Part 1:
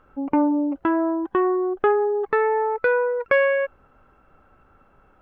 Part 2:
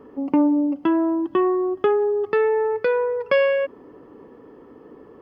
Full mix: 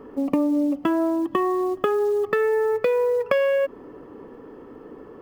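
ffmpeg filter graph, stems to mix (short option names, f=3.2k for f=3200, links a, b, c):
-filter_complex "[0:a]highshelf=f=2.5k:g=-2,acrusher=bits=6:mode=log:mix=0:aa=0.000001,volume=-4.5dB[a];[1:a]volume=3dB[b];[a][b]amix=inputs=2:normalize=0,acompressor=threshold=-18dB:ratio=6"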